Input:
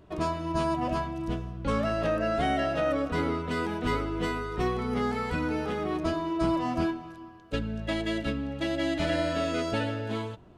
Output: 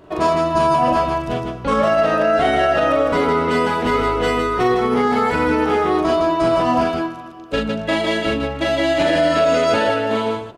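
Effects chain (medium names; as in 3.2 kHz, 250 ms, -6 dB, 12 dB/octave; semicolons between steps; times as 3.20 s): peaking EQ 700 Hz +4.5 dB 2.7 oct; on a send: loudspeakers at several distances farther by 14 m -2 dB, 54 m -4 dB; on the sum: peak limiter -15 dBFS, peak gain reduction 5 dB; bass shelf 190 Hz -8.5 dB; trim +8.5 dB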